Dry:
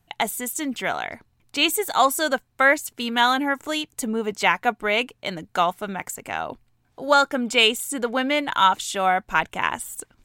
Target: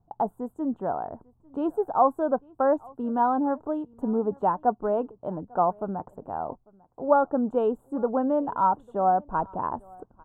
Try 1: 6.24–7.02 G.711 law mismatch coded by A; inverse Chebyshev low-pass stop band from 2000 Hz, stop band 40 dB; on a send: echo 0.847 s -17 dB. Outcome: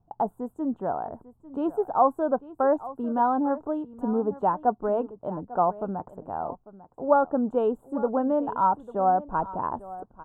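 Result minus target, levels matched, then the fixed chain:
echo-to-direct +9 dB
6.24–7.02 G.711 law mismatch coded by A; inverse Chebyshev low-pass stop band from 2000 Hz, stop band 40 dB; on a send: echo 0.847 s -26 dB

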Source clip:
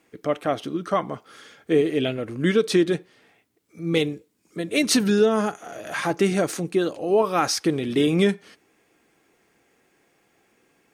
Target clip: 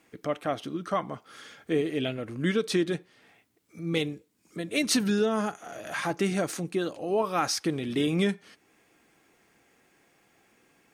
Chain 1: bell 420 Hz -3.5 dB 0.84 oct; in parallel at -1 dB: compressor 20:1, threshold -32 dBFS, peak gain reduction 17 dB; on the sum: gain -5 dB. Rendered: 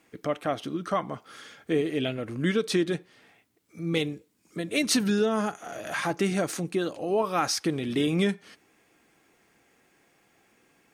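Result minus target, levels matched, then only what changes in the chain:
compressor: peak gain reduction -10 dB
change: compressor 20:1, threshold -42.5 dBFS, peak gain reduction 27 dB

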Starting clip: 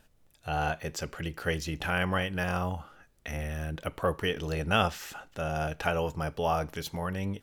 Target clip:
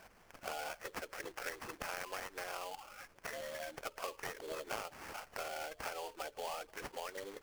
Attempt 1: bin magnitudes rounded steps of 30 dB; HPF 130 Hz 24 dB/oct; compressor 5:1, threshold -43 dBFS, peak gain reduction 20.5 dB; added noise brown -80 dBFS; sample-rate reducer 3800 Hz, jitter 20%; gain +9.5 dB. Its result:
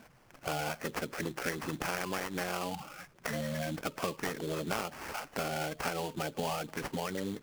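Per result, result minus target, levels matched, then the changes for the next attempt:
125 Hz band +13.0 dB; compressor: peak gain reduction -6.5 dB
change: HPF 450 Hz 24 dB/oct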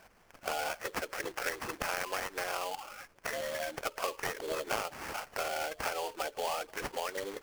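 compressor: peak gain reduction -7.5 dB
change: compressor 5:1, threshold -52.5 dBFS, peak gain reduction 27 dB

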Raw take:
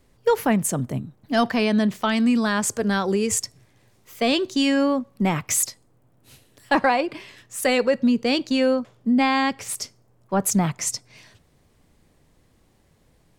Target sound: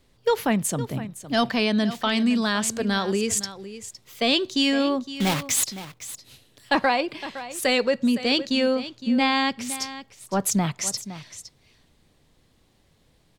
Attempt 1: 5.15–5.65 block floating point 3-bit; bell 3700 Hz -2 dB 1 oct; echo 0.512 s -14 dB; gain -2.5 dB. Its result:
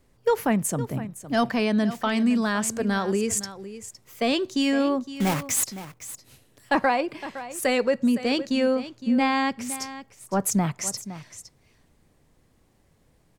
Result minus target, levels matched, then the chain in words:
4000 Hz band -6.5 dB
5.15–5.65 block floating point 3-bit; bell 3700 Hz +7.5 dB 1 oct; echo 0.512 s -14 dB; gain -2.5 dB

